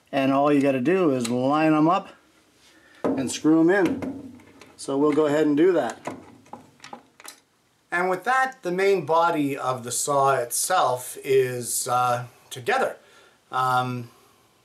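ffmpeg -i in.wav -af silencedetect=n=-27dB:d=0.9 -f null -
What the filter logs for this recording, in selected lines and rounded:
silence_start: 2.00
silence_end: 3.04 | silence_duration: 1.05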